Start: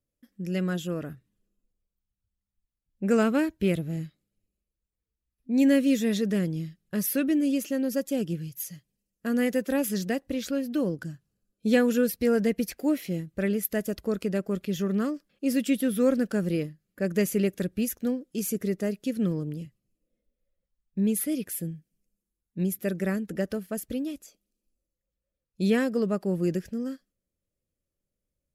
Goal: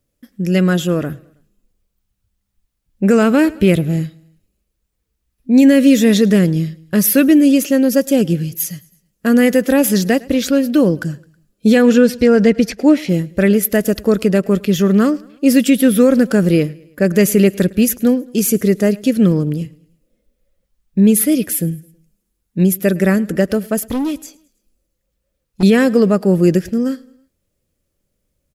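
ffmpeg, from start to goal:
-filter_complex "[0:a]asettb=1/sr,asplit=3[a][b][c];[a]atrim=end=11.824[d];[b]atrim=start=11.82:end=13.09,asetpts=PTS-STARTPTS,afade=t=in:d=0.004:c=qsin,afade=t=out:st=1.266:d=0.004:c=qsin,lowpass=6.1k[e];[c]atrim=start=13.086[f];[d][e]acrossfade=d=0.004:c1=hsin:c2=qsin[g];[g][f]acrossfade=d=0.004:c1=qsin:c2=hsin,asettb=1/sr,asplit=3[h][i][j];[h]atrim=end=23.784[k];[i]atrim=start=23.78:end=25.63,asetpts=PTS-STARTPTS,afade=t=in:d=0.004:c=qsin,afade=t=out:st=1.846:d=0.004:c=qsin,asoftclip=type=hard:threshold=-30.5dB[l];[j]atrim=start=25.626[m];[k][l]acrossfade=d=0.004:c1=hsin:c2=qsin[n];[n][m]acrossfade=d=0.004:c1=qsin:c2=hsin,aecho=1:1:107|214|321:0.0631|0.0322|0.0164,alimiter=level_in=15.5dB:limit=-1dB:release=50:level=0:latency=1,volume=-1dB"

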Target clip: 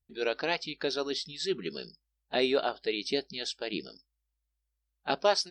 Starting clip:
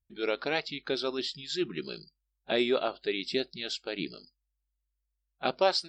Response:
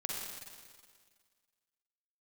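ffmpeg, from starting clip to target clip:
-af "asetrate=47187,aresample=44100"

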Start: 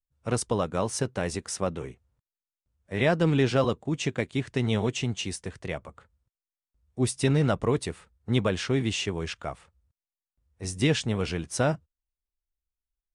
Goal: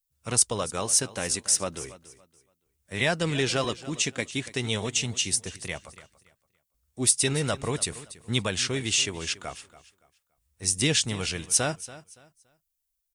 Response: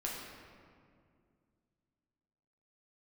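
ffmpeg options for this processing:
-filter_complex "[0:a]crystalizer=i=6.5:c=0,aphaser=in_gain=1:out_gain=1:delay=4.2:decay=0.22:speed=0.37:type=triangular,asplit=2[a][b];[b]aecho=0:1:284|568|852:0.141|0.0381|0.0103[c];[a][c]amix=inputs=2:normalize=0,volume=-5dB"

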